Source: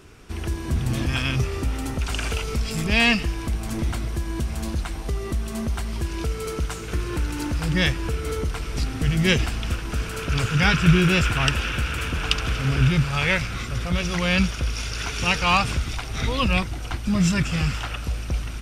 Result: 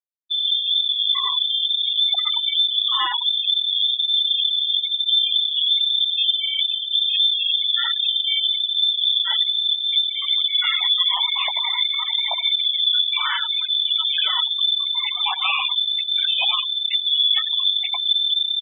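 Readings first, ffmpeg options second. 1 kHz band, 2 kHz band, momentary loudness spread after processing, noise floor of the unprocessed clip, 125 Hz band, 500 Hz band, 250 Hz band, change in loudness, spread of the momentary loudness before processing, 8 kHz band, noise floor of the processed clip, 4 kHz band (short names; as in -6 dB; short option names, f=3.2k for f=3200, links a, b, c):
-1.5 dB, -5.0 dB, 3 LU, -32 dBFS, under -40 dB, under -15 dB, under -40 dB, +6.0 dB, 10 LU, under -40 dB, -28 dBFS, +15.5 dB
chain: -filter_complex "[0:a]anlmdn=3.98,lowpass=f=3.1k:t=q:w=0.5098,lowpass=f=3.1k:t=q:w=0.6013,lowpass=f=3.1k:t=q:w=0.9,lowpass=f=3.1k:t=q:w=2.563,afreqshift=-3600,highpass=f=160:w=0.5412,highpass=f=160:w=1.3066,acontrast=66,alimiter=limit=-7.5dB:level=0:latency=1:release=85,acompressor=threshold=-21dB:ratio=5,flanger=delay=18:depth=2.9:speed=0.96,aeval=exprs='0.178*(cos(1*acos(clip(val(0)/0.178,-1,1)))-cos(1*PI/2))+0.00631*(cos(2*acos(clip(val(0)/0.178,-1,1)))-cos(2*PI/2))+0.00501*(cos(3*acos(clip(val(0)/0.178,-1,1)))-cos(3*PI/2))+0.00355*(cos(7*acos(clip(val(0)/0.178,-1,1)))-cos(7*PI/2))':c=same,asplit=2[a][b];[b]adelay=40,volume=-11dB[c];[a][c]amix=inputs=2:normalize=0,asplit=5[d][e][f][g][h];[e]adelay=90,afreqshift=-38,volume=-8dB[i];[f]adelay=180,afreqshift=-76,volume=-17.1dB[j];[g]adelay=270,afreqshift=-114,volume=-26.2dB[k];[h]adelay=360,afreqshift=-152,volume=-35.4dB[l];[d][i][j][k][l]amix=inputs=5:normalize=0,afftfilt=real='re*gte(hypot(re,im),0.1)':imag='im*gte(hypot(re,im),0.1)':win_size=1024:overlap=0.75,volume=6.5dB" -ar 11025 -c:a libmp3lame -b:a 64k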